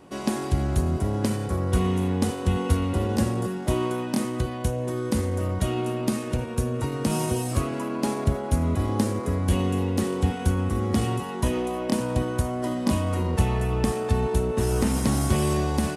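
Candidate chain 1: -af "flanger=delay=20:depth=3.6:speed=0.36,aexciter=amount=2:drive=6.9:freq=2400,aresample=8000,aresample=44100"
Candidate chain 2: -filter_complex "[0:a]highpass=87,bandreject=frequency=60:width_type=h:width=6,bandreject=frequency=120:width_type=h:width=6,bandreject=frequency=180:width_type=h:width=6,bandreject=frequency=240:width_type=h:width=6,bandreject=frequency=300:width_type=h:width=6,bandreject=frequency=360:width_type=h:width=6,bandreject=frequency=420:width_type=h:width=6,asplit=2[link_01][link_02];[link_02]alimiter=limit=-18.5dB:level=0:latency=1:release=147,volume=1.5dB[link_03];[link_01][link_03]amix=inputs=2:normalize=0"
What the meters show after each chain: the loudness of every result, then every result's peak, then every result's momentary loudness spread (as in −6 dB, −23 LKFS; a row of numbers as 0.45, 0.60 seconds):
−28.5, −21.5 LKFS; −12.0, −6.0 dBFS; 4, 3 LU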